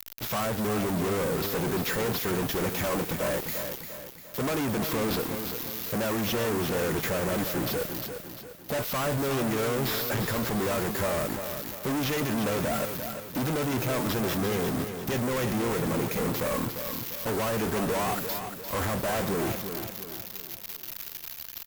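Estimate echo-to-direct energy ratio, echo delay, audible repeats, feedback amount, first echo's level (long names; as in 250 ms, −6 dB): −7.0 dB, 348 ms, 4, 45%, −8.0 dB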